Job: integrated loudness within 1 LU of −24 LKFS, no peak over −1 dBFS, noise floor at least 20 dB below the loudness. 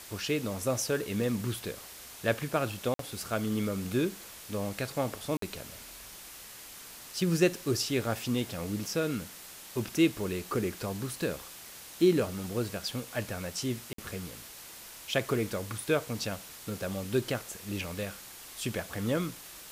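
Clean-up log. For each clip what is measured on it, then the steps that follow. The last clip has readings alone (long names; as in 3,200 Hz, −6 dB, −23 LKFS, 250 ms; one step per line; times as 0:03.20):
number of dropouts 3; longest dropout 53 ms; background noise floor −48 dBFS; target noise floor −53 dBFS; integrated loudness −32.5 LKFS; sample peak −13.0 dBFS; target loudness −24.0 LKFS
→ repair the gap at 0:02.94/0:05.37/0:13.93, 53 ms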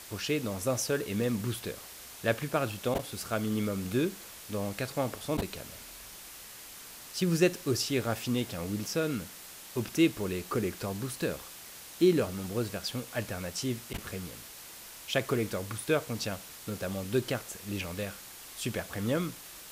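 number of dropouts 0; background noise floor −48 dBFS; target noise floor −53 dBFS
→ broadband denoise 6 dB, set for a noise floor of −48 dBFS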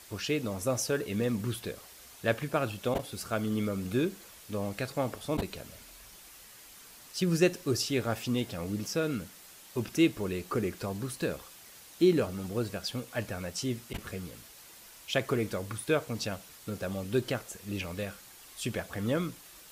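background noise floor −52 dBFS; target noise floor −53 dBFS
→ broadband denoise 6 dB, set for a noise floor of −52 dBFS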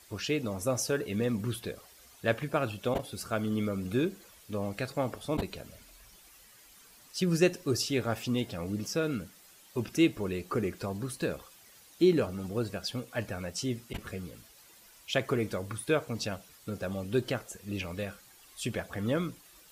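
background noise floor −57 dBFS; integrated loudness −32.5 LKFS; sample peak −13.0 dBFS; target loudness −24.0 LKFS
→ level +8.5 dB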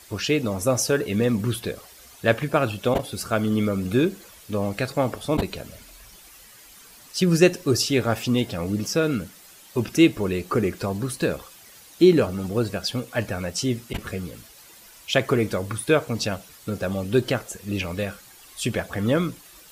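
integrated loudness −24.0 LKFS; sample peak −4.5 dBFS; background noise floor −49 dBFS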